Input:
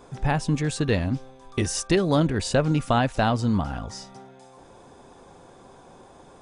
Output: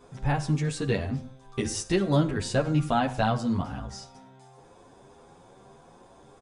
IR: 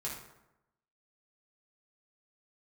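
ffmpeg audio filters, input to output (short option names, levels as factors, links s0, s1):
-filter_complex "[0:a]asplit=2[s0][s1];[1:a]atrim=start_sample=2205,afade=t=out:st=0.26:d=0.01,atrim=end_sample=11907[s2];[s1][s2]afir=irnorm=-1:irlink=0,volume=0.376[s3];[s0][s3]amix=inputs=2:normalize=0,asplit=2[s4][s5];[s5]adelay=9.4,afreqshift=1.7[s6];[s4][s6]amix=inputs=2:normalize=1,volume=0.708"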